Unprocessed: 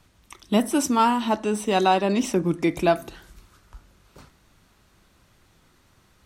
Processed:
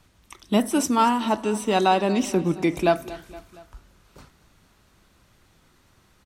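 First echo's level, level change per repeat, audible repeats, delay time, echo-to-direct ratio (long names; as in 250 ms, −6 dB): −18.5 dB, −4.5 dB, 3, 233 ms, −17.0 dB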